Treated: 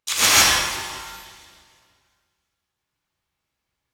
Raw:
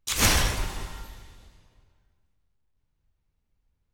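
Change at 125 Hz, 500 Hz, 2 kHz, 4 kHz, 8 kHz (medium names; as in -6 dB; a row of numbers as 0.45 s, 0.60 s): -7.5 dB, +3.0 dB, +9.0 dB, +9.5 dB, +9.0 dB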